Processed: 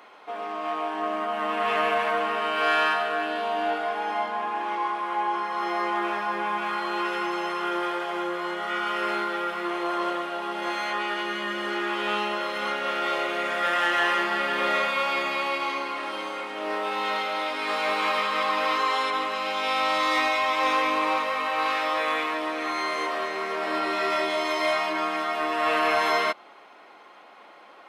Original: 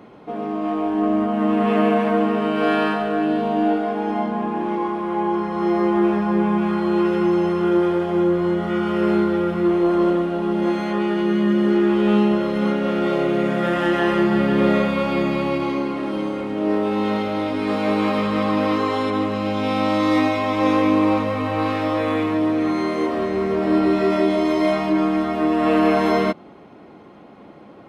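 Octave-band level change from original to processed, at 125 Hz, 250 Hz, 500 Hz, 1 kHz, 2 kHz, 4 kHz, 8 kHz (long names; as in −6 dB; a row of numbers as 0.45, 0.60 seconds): below −20 dB, −17.5 dB, −9.0 dB, −0.5 dB, +3.0 dB, +3.5 dB, can't be measured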